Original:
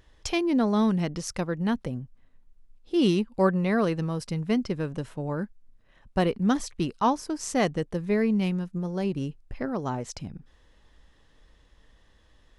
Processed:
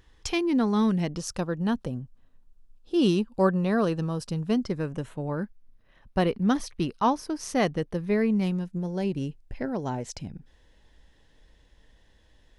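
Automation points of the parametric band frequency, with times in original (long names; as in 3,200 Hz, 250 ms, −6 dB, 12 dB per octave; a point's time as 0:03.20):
parametric band −13 dB 0.2 octaves
0:00.79 610 Hz
0:01.20 2,100 Hz
0:04.54 2,100 Hz
0:05.34 7,500 Hz
0:08.19 7,500 Hz
0:08.64 1,200 Hz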